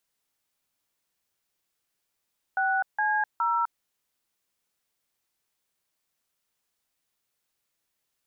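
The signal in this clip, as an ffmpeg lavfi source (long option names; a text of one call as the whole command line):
ffmpeg -f lavfi -i "aevalsrc='0.0562*clip(min(mod(t,0.415),0.254-mod(t,0.415))/0.002,0,1)*(eq(floor(t/0.415),0)*(sin(2*PI*770*mod(t,0.415))+sin(2*PI*1477*mod(t,0.415)))+eq(floor(t/0.415),1)*(sin(2*PI*852*mod(t,0.415))+sin(2*PI*1633*mod(t,0.415)))+eq(floor(t/0.415),2)*(sin(2*PI*941*mod(t,0.415))+sin(2*PI*1336*mod(t,0.415))))':duration=1.245:sample_rate=44100" out.wav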